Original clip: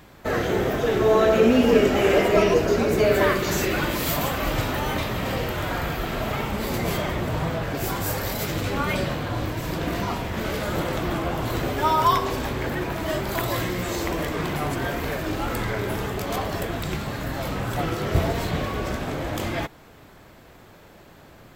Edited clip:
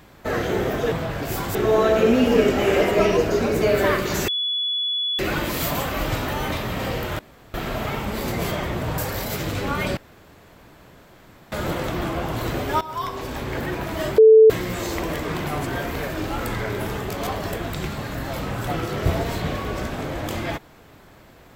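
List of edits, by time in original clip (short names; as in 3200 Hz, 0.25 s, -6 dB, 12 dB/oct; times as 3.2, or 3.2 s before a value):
3.65 add tone 3410 Hz -21 dBFS 0.91 s
5.65–6 room tone
7.44–8.07 move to 0.92
9.06–10.61 room tone
11.9–12.67 fade in linear, from -18 dB
13.27–13.59 bleep 440 Hz -6.5 dBFS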